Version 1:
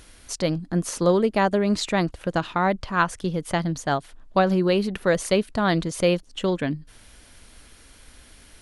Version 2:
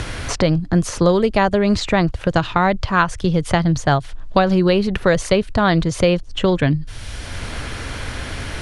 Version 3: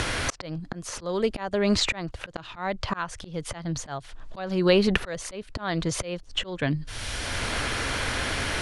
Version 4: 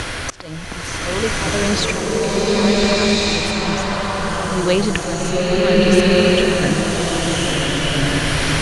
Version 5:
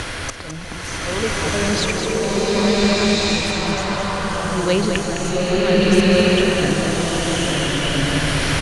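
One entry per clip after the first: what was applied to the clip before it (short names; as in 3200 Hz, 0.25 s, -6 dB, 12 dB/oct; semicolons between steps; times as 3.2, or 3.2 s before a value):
LPF 7100 Hz 12 dB/oct; resonant low shelf 150 Hz +10 dB, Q 1.5; three-band squash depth 70%; gain +6 dB
low shelf 230 Hz -9 dB; auto swell 0.57 s; gain +3 dB
bloom reverb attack 1.49 s, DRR -8.5 dB; gain +2.5 dB
echo 0.21 s -7 dB; gain -2 dB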